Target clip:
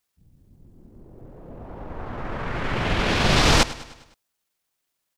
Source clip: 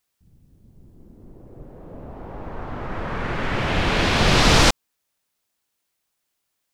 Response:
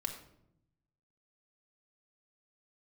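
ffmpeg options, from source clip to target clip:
-af "atempo=1.3,aecho=1:1:102|204|306|408|510:0.133|0.0707|0.0375|0.0199|0.0105,volume=-1.5dB"

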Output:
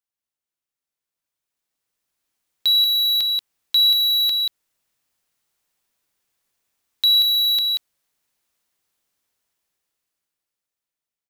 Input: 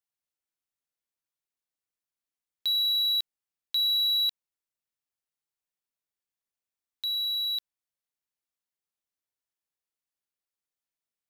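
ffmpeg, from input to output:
ffmpeg -i in.wav -filter_complex "[0:a]alimiter=level_in=2dB:limit=-24dB:level=0:latency=1:release=336,volume=-2dB,asplit=2[link_01][link_02];[link_02]aecho=0:1:184:0.501[link_03];[link_01][link_03]amix=inputs=2:normalize=0,dynaudnorm=framelen=360:gausssize=11:maxgain=16dB" out.wav

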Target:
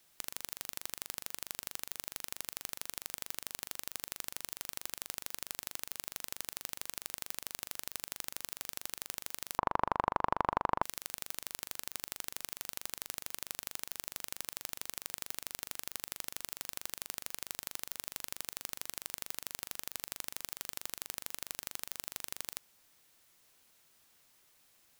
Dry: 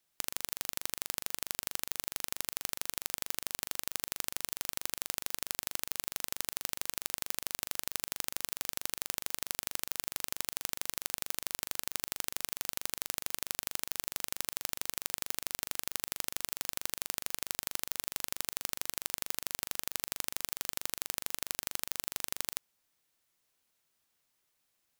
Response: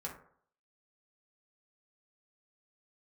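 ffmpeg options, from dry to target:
-filter_complex "[0:a]asettb=1/sr,asplit=3[link_01][link_02][link_03];[link_01]atrim=end=9.584[link_04];[link_02]atrim=start=9.58:end=10.83,asetpts=PTS-STARTPTS,afade=type=in:duration=0.004:curve=qsin,afade=type=out:start_time=1.246:duration=0.004:curve=qsin,lowpass=frequency=990:width_type=q:width=4.5[link_05];[link_03]atrim=start=10.826[link_06];[link_04][link_05]acrossfade=duration=0.004:curve1=hsin:curve2=qsin[link_07];[link_07][link_06]acrossfade=duration=0.004:curve1=qsin:curve2=hsin,aeval=exprs='0.178*(abs(mod(val(0)/0.178+3,4)-2)-1)':channel_layout=same,volume=11dB"

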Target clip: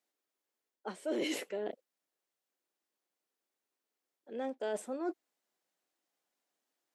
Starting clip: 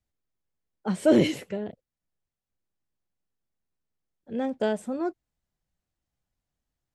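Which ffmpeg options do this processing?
ffmpeg -i in.wav -af "highpass=frequency=300:width=0.5412,highpass=frequency=300:width=1.3066,areverse,acompressor=threshold=-38dB:ratio=5,areverse,volume=3.5dB" out.wav

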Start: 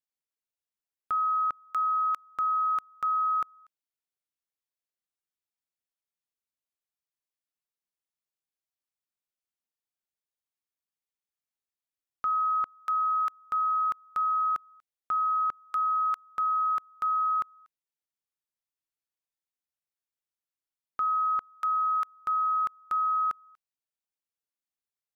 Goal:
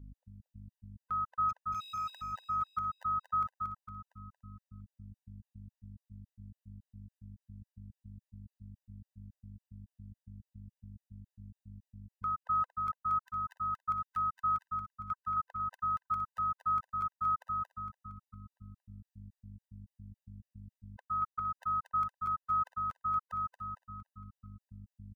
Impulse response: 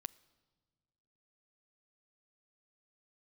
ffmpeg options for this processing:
-filter_complex "[0:a]asettb=1/sr,asplit=3[link_01][link_02][link_03];[link_01]atrim=end=13.274[link_04];[link_02]atrim=start=13.27:end=15.14,asetpts=PTS-STARTPTS,afade=type=in:duration=0.004:curve=qsin,afade=type=out:start_time=1.866:duration=0.004:curve=qsin,highpass=frequency=1100:width=0.5412,highpass=frequency=1100:width=1.3066[link_05];[link_03]atrim=start=15.136[link_06];[link_04][link_05]acrossfade=duration=0.004:curve1=hsin:curve2=qsin[link_07];[link_07][link_06]acrossfade=duration=0.004:curve1=qsin:curve2=hsin,alimiter=level_in=4.5dB:limit=-24dB:level=0:latency=1,volume=-4.5dB,aeval=exprs='val(0)+0.00447*(sin(2*PI*50*n/s)+sin(2*PI*2*50*n/s)/2+sin(2*PI*3*50*n/s)/3+sin(2*PI*4*50*n/s)/4+sin(2*PI*5*50*n/s)/5)':channel_layout=same,asettb=1/sr,asplit=3[link_08][link_09][link_10];[link_08]atrim=end=1.494[link_11];[link_09]atrim=start=1.49:end=2.1,asetpts=PTS-STARTPTS,afade=type=in:duration=0.004:curve=qsin,afade=type=out:start_time=0.606:duration=0.004:curve=qsin,asoftclip=type=hard:threshold=-36.5dB[link_12];[link_10]atrim=start=2.096[link_13];[link_11][link_12]acrossfade=duration=0.004:curve1=hsin:curve2=qsin[link_14];[link_14][link_13]acrossfade=duration=0.004:curve1=qsin:curve2=hsin,aecho=1:1:230|460|690|920|1150|1380:0.596|0.28|0.132|0.0618|0.0291|0.0137,afftfilt=real='re*gt(sin(2*PI*3.6*pts/sr)*(1-2*mod(floor(b*sr/1024/510),2)),0)':imag='im*gt(sin(2*PI*3.6*pts/sr)*(1-2*mod(floor(b*sr/1024/510),2)),0)':win_size=1024:overlap=0.75,volume=-1dB"

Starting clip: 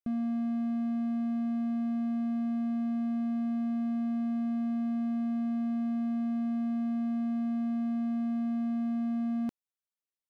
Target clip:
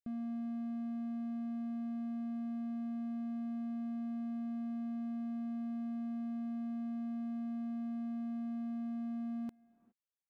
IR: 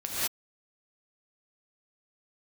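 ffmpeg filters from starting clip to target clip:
-filter_complex "[0:a]asplit=2[link_01][link_02];[1:a]atrim=start_sample=2205,asetrate=22932,aresample=44100,lowpass=2100[link_03];[link_02][link_03]afir=irnorm=-1:irlink=0,volume=-30.5dB[link_04];[link_01][link_04]amix=inputs=2:normalize=0,volume=-9dB"

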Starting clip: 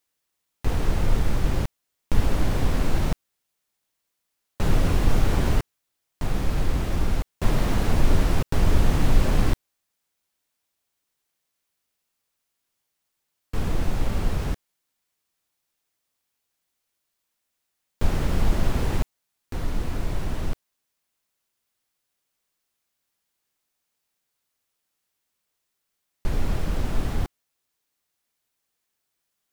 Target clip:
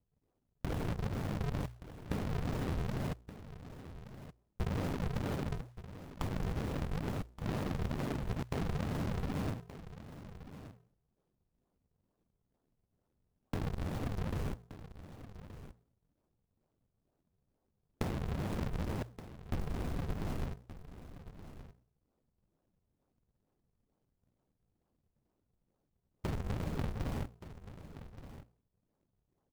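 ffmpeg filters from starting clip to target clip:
ffmpeg -i in.wav -filter_complex "[0:a]afftfilt=real='re*lt(hypot(re,im),0.708)':imag='im*lt(hypot(re,im),0.708)':win_size=1024:overlap=0.75,lowpass=frequency=1700:poles=1,aemphasis=mode=production:type=75kf,bandreject=frequency=60:width_type=h:width=6,bandreject=frequency=120:width_type=h:width=6,adynamicequalizer=threshold=0.00398:dfrequency=340:dqfactor=7.4:tfrequency=340:tqfactor=7.4:attack=5:release=100:ratio=0.375:range=2:mode=cutabove:tftype=bell,asplit=2[link_01][link_02];[link_02]alimiter=limit=-22.5dB:level=0:latency=1:release=17,volume=0dB[link_03];[link_01][link_03]amix=inputs=2:normalize=0,acompressor=threshold=-37dB:ratio=4,aresample=11025,acrusher=samples=22:mix=1:aa=0.000001:lfo=1:lforange=35.2:lforate=2.2,aresample=44100,adynamicsmooth=sensitivity=5.5:basefreq=970,acrusher=bits=3:mode=log:mix=0:aa=0.000001,aecho=1:1:1174:0.211,volume=1dB" out.wav

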